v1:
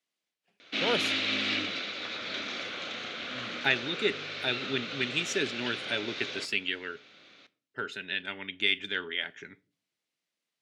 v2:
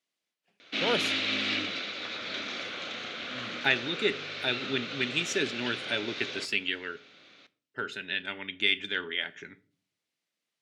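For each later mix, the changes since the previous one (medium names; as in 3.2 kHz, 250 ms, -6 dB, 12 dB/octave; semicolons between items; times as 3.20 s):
speech: send +9.0 dB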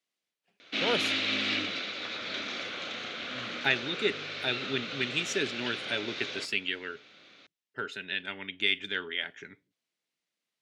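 speech: send off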